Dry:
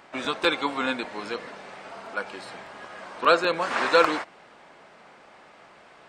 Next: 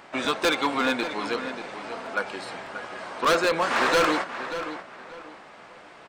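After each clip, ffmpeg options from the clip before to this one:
ffmpeg -i in.wav -filter_complex "[0:a]asoftclip=type=hard:threshold=-20.5dB,asplit=2[link_01][link_02];[link_02]adelay=585,lowpass=frequency=4100:poles=1,volume=-10.5dB,asplit=2[link_03][link_04];[link_04]adelay=585,lowpass=frequency=4100:poles=1,volume=0.28,asplit=2[link_05][link_06];[link_06]adelay=585,lowpass=frequency=4100:poles=1,volume=0.28[link_07];[link_01][link_03][link_05][link_07]amix=inputs=4:normalize=0,volume=3.5dB" out.wav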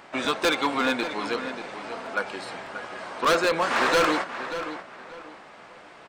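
ffmpeg -i in.wav -af anull out.wav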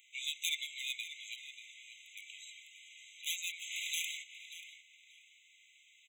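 ffmpeg -i in.wav -af "aderivative,afftfilt=real='re*eq(mod(floor(b*sr/1024/2000),2),1)':imag='im*eq(mod(floor(b*sr/1024/2000),2),1)':win_size=1024:overlap=0.75" out.wav

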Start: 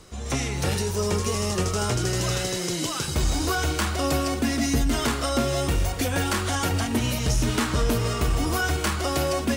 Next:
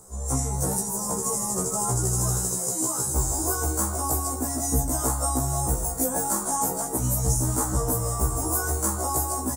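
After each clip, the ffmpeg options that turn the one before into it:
ffmpeg -i in.wav -af "firequalizer=gain_entry='entry(380,0);entry(820,6);entry(1700,-12);entry(2700,-26);entry(7400,12)':delay=0.05:min_phase=1,afftfilt=real='re*1.73*eq(mod(b,3),0)':imag='im*1.73*eq(mod(b,3),0)':win_size=2048:overlap=0.75" out.wav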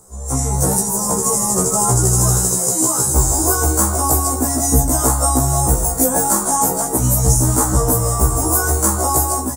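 ffmpeg -i in.wav -af "dynaudnorm=framelen=260:gausssize=3:maxgain=8.5dB,volume=2dB" out.wav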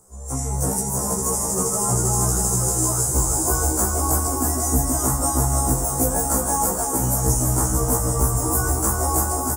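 ffmpeg -i in.wav -filter_complex "[0:a]equalizer=frequency=3900:width=4.3:gain=-7,asplit=2[link_01][link_02];[link_02]aecho=0:1:340|629|874.6|1083|1261:0.631|0.398|0.251|0.158|0.1[link_03];[link_01][link_03]amix=inputs=2:normalize=0,volume=-7dB" out.wav

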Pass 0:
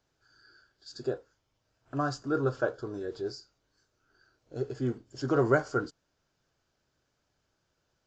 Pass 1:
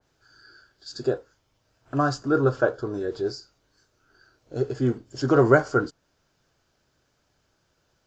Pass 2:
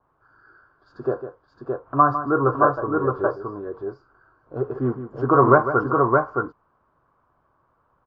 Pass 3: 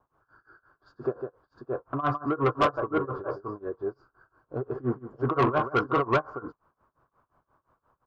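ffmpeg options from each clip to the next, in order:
ffmpeg -i in.wav -af "adynamicequalizer=threshold=0.00398:dfrequency=2300:dqfactor=0.7:tfrequency=2300:tqfactor=0.7:attack=5:release=100:ratio=0.375:range=2:mode=cutabove:tftype=highshelf,volume=7.5dB" out.wav
ffmpeg -i in.wav -filter_complex "[0:a]lowpass=frequency=1100:width_type=q:width=6.7,asplit=2[link_01][link_02];[link_02]aecho=0:1:152|618:0.282|0.668[link_03];[link_01][link_03]amix=inputs=2:normalize=0,volume=-1dB" out.wav
ffmpeg -i in.wav -af "tremolo=f=5.7:d=0.94,asoftclip=type=tanh:threshold=-16dB" out.wav

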